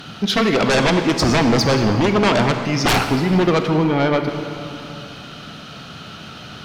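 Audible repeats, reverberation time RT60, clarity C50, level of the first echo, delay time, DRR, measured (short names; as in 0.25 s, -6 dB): none, 2.8 s, 6.5 dB, none, none, 6.0 dB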